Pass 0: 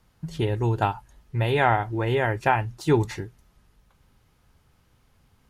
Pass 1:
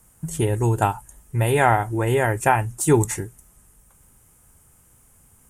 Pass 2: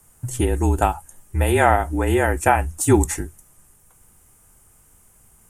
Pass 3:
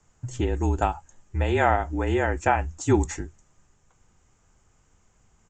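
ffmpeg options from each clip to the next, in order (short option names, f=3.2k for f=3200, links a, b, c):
-af "highshelf=f=6.1k:t=q:w=3:g=13,volume=3.5dB"
-af "afreqshift=-39,volume=1.5dB"
-af "aresample=16000,aresample=44100,volume=-5dB"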